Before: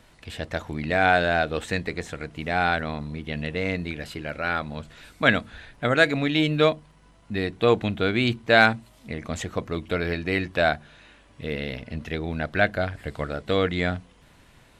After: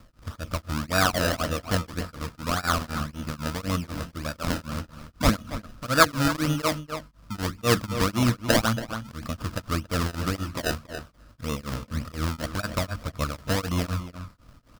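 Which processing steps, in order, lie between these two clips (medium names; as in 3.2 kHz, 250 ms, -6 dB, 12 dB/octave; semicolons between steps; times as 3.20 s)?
bass shelf 270 Hz +7.5 dB; decimation with a swept rate 27×, swing 100% 1.8 Hz; graphic EQ with 31 bands 160 Hz -5 dB, 400 Hz -12 dB, 800 Hz -9 dB, 1.25 kHz +9 dB, 2 kHz -3 dB, 5 kHz +5 dB; echo from a far wall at 48 m, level -11 dB; tremolo of two beating tones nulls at 4 Hz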